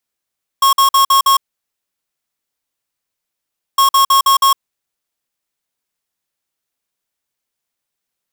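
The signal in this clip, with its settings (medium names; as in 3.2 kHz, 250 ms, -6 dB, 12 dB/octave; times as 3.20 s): beep pattern square 1.09 kHz, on 0.11 s, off 0.05 s, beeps 5, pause 2.41 s, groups 2, -10 dBFS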